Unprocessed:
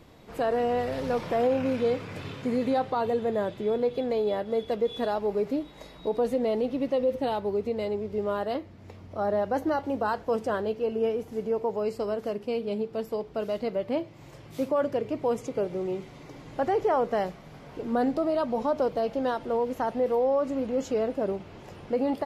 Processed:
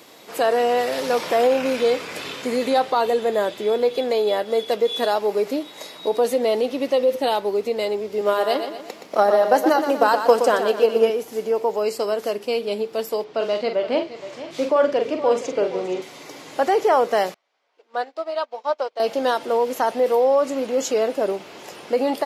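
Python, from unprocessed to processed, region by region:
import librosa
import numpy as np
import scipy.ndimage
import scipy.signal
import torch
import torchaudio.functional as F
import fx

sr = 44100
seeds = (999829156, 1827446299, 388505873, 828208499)

y = fx.chain(x, sr, fx.highpass(hz=140.0, slope=24),
    fx.transient(attack_db=8, sustain_db=1),
    fx.echo_feedback(ms=121, feedback_pct=47, wet_db=-8.0), at=(8.21, 11.1))
y = fx.chain(y, sr, fx.lowpass(hz=4700.0, slope=12),
    fx.doubler(ms=44.0, db=-7.0),
    fx.echo_single(ms=471, db=-13.5), at=(13.24, 16.02))
y = fx.chain(y, sr, fx.bandpass_edges(low_hz=580.0, high_hz=5000.0),
    fx.upward_expand(threshold_db=-44.0, expansion=2.5), at=(17.34, 19.0))
y = scipy.signal.sosfilt(scipy.signal.butter(2, 340.0, 'highpass', fs=sr, output='sos'), y)
y = fx.high_shelf(y, sr, hz=3300.0, db=11.5)
y = F.gain(torch.from_numpy(y), 7.5).numpy()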